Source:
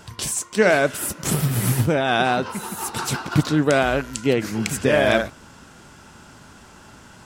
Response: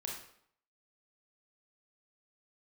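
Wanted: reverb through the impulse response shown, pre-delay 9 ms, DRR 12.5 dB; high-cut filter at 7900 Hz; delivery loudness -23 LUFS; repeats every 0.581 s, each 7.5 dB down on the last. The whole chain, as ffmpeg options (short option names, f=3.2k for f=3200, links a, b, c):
-filter_complex "[0:a]lowpass=7.9k,aecho=1:1:581|1162|1743|2324|2905:0.422|0.177|0.0744|0.0312|0.0131,asplit=2[a][b];[1:a]atrim=start_sample=2205,adelay=9[c];[b][c]afir=irnorm=-1:irlink=0,volume=-12.5dB[d];[a][d]amix=inputs=2:normalize=0,volume=-2.5dB"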